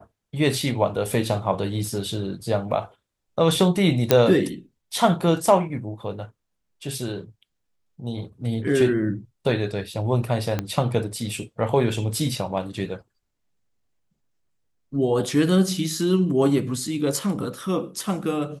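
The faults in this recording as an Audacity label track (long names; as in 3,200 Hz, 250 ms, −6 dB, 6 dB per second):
4.110000	4.110000	click −1 dBFS
10.590000	10.590000	click −11 dBFS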